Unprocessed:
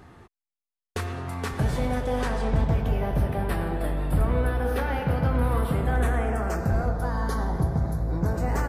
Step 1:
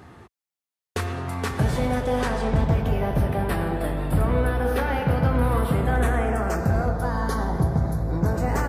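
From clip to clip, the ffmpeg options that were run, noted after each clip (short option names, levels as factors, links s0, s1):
-af "highpass=59,volume=1.5"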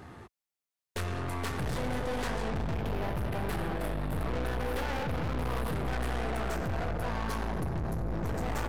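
-af "aeval=exprs='(tanh(39.8*val(0)+0.55)-tanh(0.55))/39.8':c=same,volume=1.12"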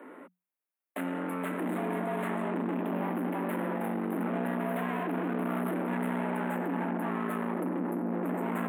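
-af "afreqshift=180,asuperstop=centerf=5200:order=4:qfactor=0.68"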